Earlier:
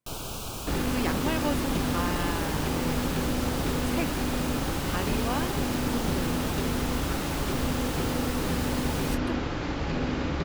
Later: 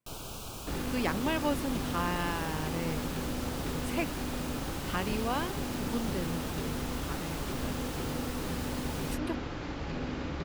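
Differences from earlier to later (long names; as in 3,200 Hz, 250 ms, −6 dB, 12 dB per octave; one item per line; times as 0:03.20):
first sound −6.0 dB
second sound −7.0 dB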